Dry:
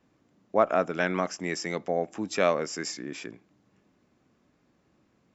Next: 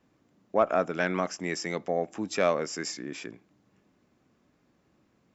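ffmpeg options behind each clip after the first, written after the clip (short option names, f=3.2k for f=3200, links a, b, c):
-af "acontrast=67,volume=-7dB"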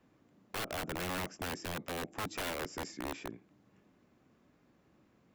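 -filter_complex "[0:a]acrossover=split=440[a][b];[b]acompressor=threshold=-52dB:ratio=2[c];[a][c]amix=inputs=2:normalize=0,aeval=exprs='(mod(33.5*val(0)+1,2)-1)/33.5':c=same,equalizer=f=6k:w=0.97:g=-4"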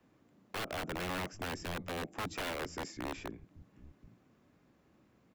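-filter_complex "[0:a]acrossover=split=180|3800[a][b][c];[a]aecho=1:1:784:0.596[d];[c]asoftclip=type=tanh:threshold=-38.5dB[e];[d][b][e]amix=inputs=3:normalize=0"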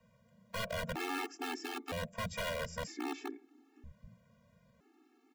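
-af "afftfilt=real='re*gt(sin(2*PI*0.52*pts/sr)*(1-2*mod(floor(b*sr/1024/230),2)),0)':imag='im*gt(sin(2*PI*0.52*pts/sr)*(1-2*mod(floor(b*sr/1024/230),2)),0)':win_size=1024:overlap=0.75,volume=3.5dB"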